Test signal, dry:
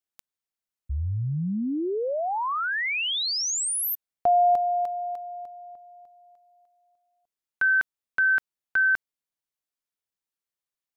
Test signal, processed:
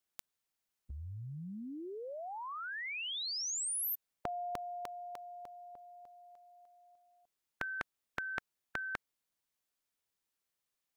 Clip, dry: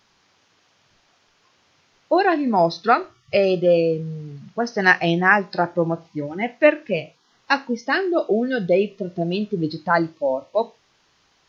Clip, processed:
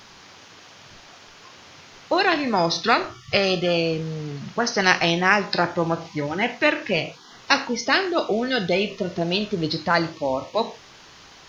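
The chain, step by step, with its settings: spectral compressor 2:1

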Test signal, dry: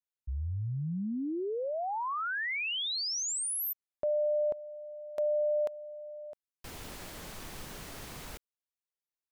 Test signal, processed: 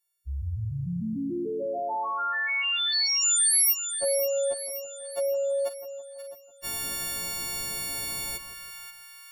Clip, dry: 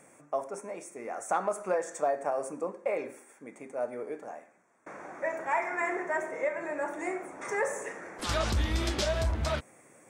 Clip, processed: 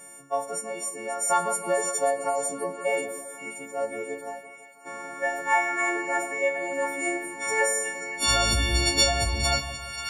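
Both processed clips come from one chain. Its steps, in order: frequency quantiser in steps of 4 st; split-band echo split 1200 Hz, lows 0.165 s, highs 0.534 s, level -9.5 dB; gain +3 dB

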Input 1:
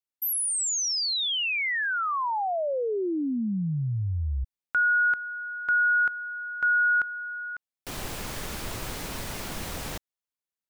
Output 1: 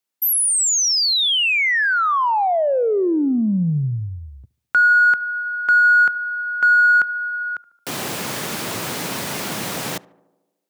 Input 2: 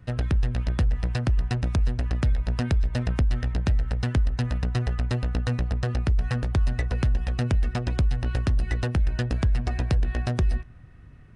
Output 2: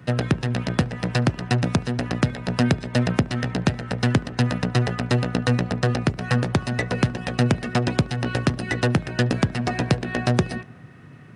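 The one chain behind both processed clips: HPF 130 Hz 24 dB/oct; in parallel at -11.5 dB: soft clip -28 dBFS; on the sum: tape echo 72 ms, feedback 72%, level -20.5 dB, low-pass 1400 Hz; gain +8 dB

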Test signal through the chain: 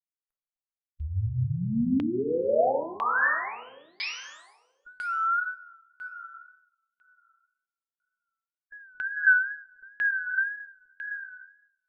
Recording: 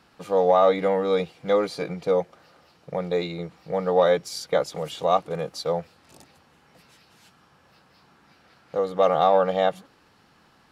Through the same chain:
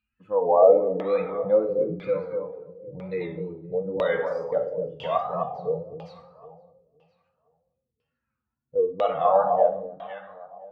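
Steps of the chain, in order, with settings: per-bin expansion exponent 2; in parallel at +1 dB: compressor, threshold -37 dBFS; on the sum: two-slope reverb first 0.95 s, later 2.4 s, from -25 dB, DRR 2 dB; wow and flutter 100 cents; on a send: echo with dull and thin repeats by turns 0.256 s, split 1100 Hz, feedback 52%, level -6 dB; on the sum: LFO low-pass saw down 1 Hz 290–3000 Hz; gain -4.5 dB

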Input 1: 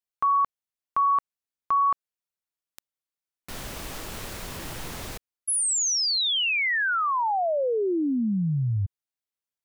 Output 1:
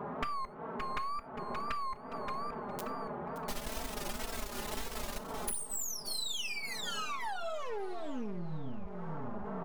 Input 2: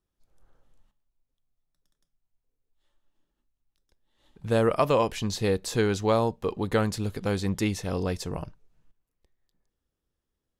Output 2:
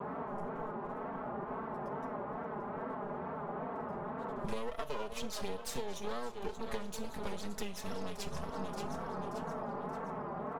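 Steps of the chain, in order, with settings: envelope flanger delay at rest 11.8 ms, full sweep at -23.5 dBFS; on a send: feedback echo 0.575 s, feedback 40%, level -13 dB; on the sum: half-wave rectifier; band noise 83–1100 Hz -49 dBFS; dynamic EQ 230 Hz, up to -6 dB, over -45 dBFS, Q 0.72; comb 4.7 ms, depth 91%; compressor 8:1, threshold -39 dBFS; non-linear reverb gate 0.13 s falling, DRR 11.5 dB; wow and flutter 95 cents; gain +6 dB

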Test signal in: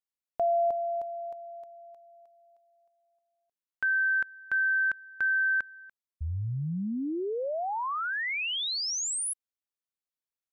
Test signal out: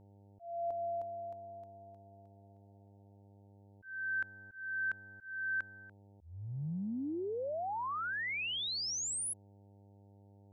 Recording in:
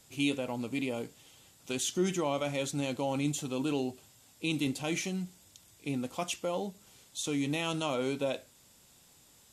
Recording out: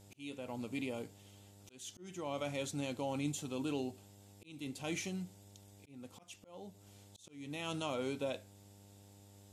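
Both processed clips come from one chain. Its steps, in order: buzz 100 Hz, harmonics 9, -54 dBFS -6 dB/oct; auto swell 0.45 s; gain -6 dB

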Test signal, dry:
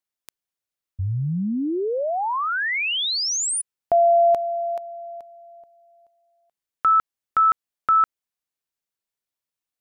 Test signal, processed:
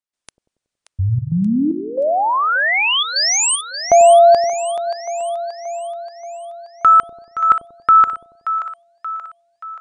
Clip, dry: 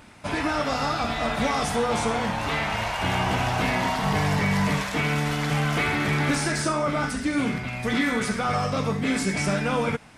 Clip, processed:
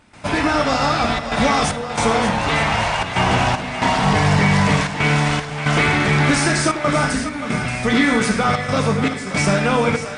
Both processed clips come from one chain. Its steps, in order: step gate ".xxxxxxxx.xxx." 114 bpm -12 dB; brick-wall FIR low-pass 9900 Hz; split-band echo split 580 Hz, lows 93 ms, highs 0.579 s, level -10 dB; gain +7.5 dB

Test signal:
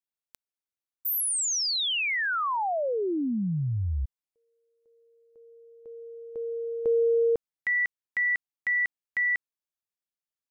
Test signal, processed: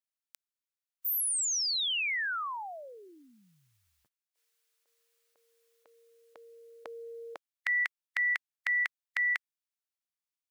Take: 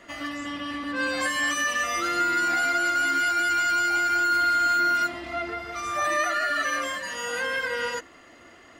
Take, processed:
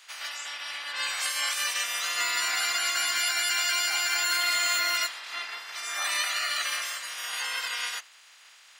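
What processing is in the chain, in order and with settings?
spectral limiter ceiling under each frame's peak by 23 dB; HPF 1300 Hz 12 dB/oct; gain -1.5 dB

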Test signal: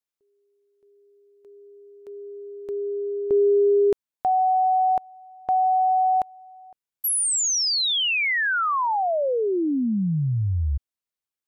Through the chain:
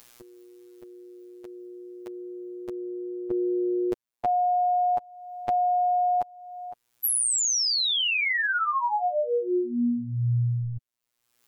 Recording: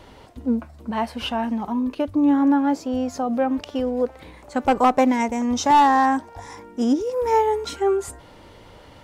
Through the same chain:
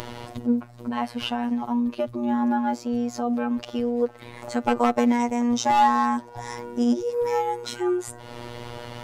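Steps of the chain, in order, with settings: upward compressor, threshold -23 dBFS; robotiser 120 Hz

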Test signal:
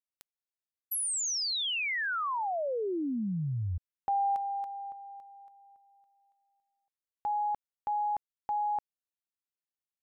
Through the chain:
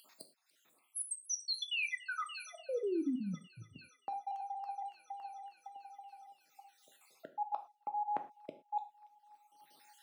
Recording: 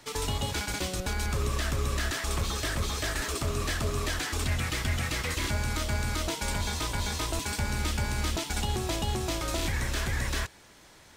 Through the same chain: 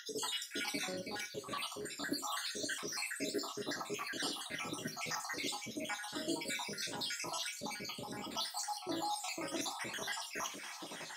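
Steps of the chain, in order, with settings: random spectral dropouts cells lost 70%; in parallel at -5 dB: overloaded stage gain 26 dB; on the sum: upward compressor, threshold -50 dBFS; thin delay 0.288 s, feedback 78%, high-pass 2100 Hz, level -23 dB; reverse; compressor 5:1, threshold -44 dBFS; reverse; HPF 180 Hz 24 dB/oct; high shelf 9200 Hz -8 dB; non-linear reverb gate 0.14 s falling, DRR 6.5 dB; dynamic EQ 1200 Hz, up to -4 dB, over -59 dBFS, Q 1; gain +8.5 dB

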